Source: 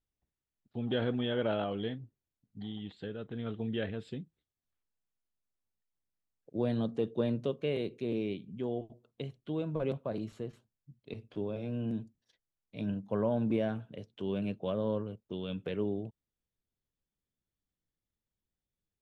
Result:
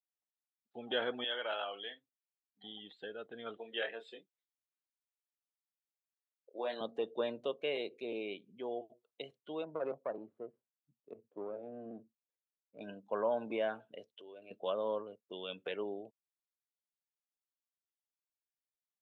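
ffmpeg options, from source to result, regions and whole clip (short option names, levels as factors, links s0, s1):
-filter_complex "[0:a]asettb=1/sr,asplit=3[s0][s1][s2];[s0]atrim=end=1.244[s3];[s1]atrim=start=1.24:end=2.64,asetpts=PTS-STARTPTS,afade=t=in:d=0.004:c=qsin,afade=t=out:st=1.396:d=0.004:c=qsin,highpass=f=1200:p=1,asplit=2[s4][s5];[s5]adelay=50,volume=0.266[s6];[s4][s6]amix=inputs=2:normalize=0,atrim=end_sample=61740[s7];[s2]atrim=start=2.636[s8];[s3][s7]acrossfade=d=0.004:c1=hsin:c2=qsin[s9];[s9][s8]acrossfade=d=0.004:c1=qsin:c2=hsin,asettb=1/sr,asplit=3[s10][s11][s12];[s10]atrim=end=3.574[s13];[s11]atrim=start=3.57:end=6.81,asetpts=PTS-STARTPTS,afade=t=in:d=0.004:c=qsin,afade=t=out:st=3.236:d=0.004:c=qsin,highpass=420,asplit=2[s14][s15];[s15]adelay=26,volume=0.501[s16];[s14][s16]amix=inputs=2:normalize=0,atrim=end_sample=142884[s17];[s12]atrim=start=6.806[s18];[s13][s17]acrossfade=d=0.004:c1=hsin:c2=qsin[s19];[s19][s18]acrossfade=d=0.004:c1=qsin:c2=hsin,asettb=1/sr,asplit=3[s20][s21][s22];[s20]atrim=end=9.644[s23];[s21]atrim=start=9.64:end=12.81,asetpts=PTS-STARTPTS,afade=t=in:d=0.004:c=qsin,afade=t=out:st=3.166:d=0.004:c=qsin,highpass=88,adynamicsmooth=sensitivity=2:basefreq=590[s24];[s22]atrim=start=12.806[s25];[s23][s24]acrossfade=d=0.004:c1=hsin:c2=qsin[s26];[s26][s25]acrossfade=d=0.004:c1=qsin:c2=hsin,asettb=1/sr,asplit=3[s27][s28][s29];[s27]atrim=end=14.104[s30];[s28]atrim=start=14.1:end=14.51,asetpts=PTS-STARTPTS,afade=t=in:d=0.004:c=qsin,afade=t=out:st=0.406:d=0.004:c=qsin,equalizer=f=190:t=o:w=0.42:g=-13,acompressor=threshold=0.00251:ratio=2:attack=3.2:release=140:knee=1:detection=peak[s31];[s29]atrim=start=14.506[s32];[s30][s31]acrossfade=d=0.004:c1=hsin:c2=qsin[s33];[s33][s32]acrossfade=d=0.004:c1=qsin:c2=hsin,afftdn=nr=14:nf=-52,highpass=630,volume=1.5"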